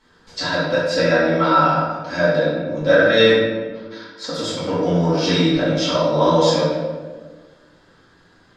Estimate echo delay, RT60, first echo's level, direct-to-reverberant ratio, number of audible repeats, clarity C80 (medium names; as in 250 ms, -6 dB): no echo, 1.5 s, no echo, -11.0 dB, no echo, 1.5 dB